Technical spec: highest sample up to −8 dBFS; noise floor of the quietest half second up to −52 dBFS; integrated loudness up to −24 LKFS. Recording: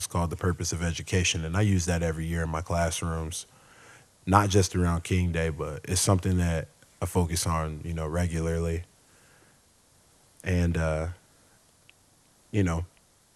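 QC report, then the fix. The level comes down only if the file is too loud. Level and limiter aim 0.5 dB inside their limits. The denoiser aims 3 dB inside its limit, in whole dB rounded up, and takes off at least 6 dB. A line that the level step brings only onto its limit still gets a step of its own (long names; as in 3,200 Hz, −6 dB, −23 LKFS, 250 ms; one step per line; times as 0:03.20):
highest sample −4.0 dBFS: out of spec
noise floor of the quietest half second −62 dBFS: in spec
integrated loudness −28.0 LKFS: in spec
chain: brickwall limiter −8.5 dBFS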